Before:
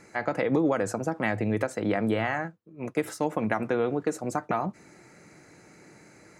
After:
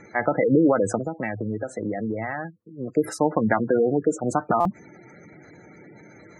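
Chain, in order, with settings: spectral gate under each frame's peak -15 dB strong; 0.99–2.92 s: compression 2.5:1, threshold -35 dBFS, peak gain reduction 9.5 dB; buffer glitch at 4.60 s, samples 256, times 8; trim +6.5 dB

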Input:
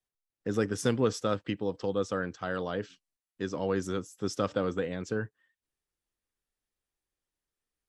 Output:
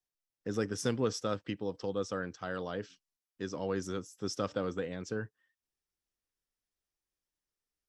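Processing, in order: peaking EQ 5.5 kHz +6 dB 0.39 oct; trim -4.5 dB

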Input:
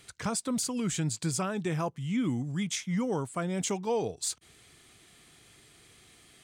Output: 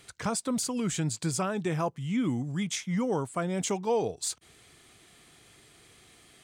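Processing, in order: peaking EQ 680 Hz +3 dB 2.2 oct

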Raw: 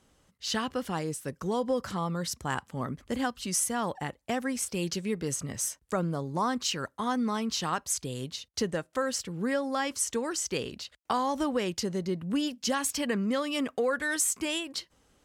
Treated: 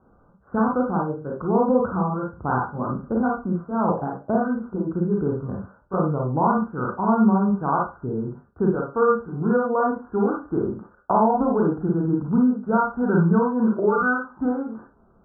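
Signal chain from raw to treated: pitch bend over the whole clip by -3.5 st starting unshifted; Chebyshev low-pass 1.5 kHz, order 8; Schroeder reverb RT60 0.3 s, combs from 32 ms, DRR -1.5 dB; trim +7.5 dB

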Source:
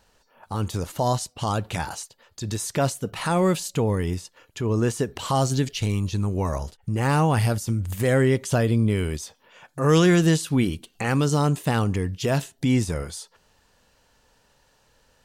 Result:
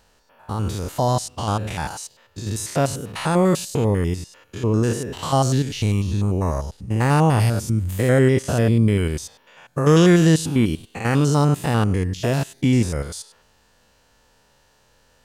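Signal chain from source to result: spectrogram pixelated in time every 100 ms; trim +4.5 dB

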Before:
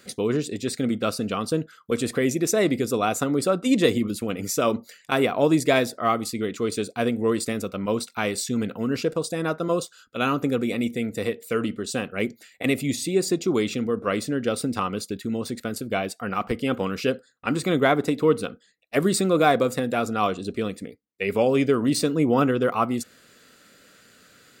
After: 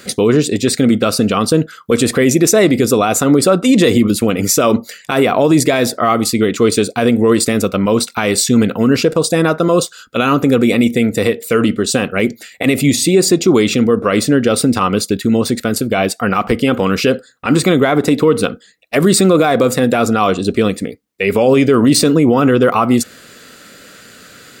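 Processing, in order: loudness maximiser +15.5 dB; trim -1 dB

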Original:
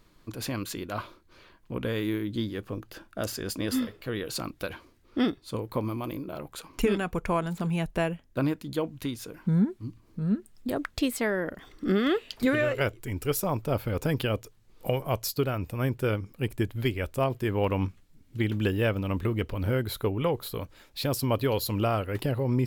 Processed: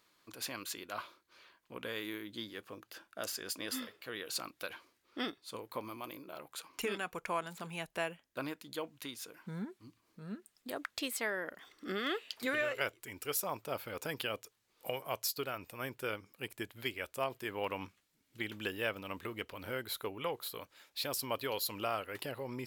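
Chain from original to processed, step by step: high-pass 1.1 kHz 6 dB/octave; trim -3 dB

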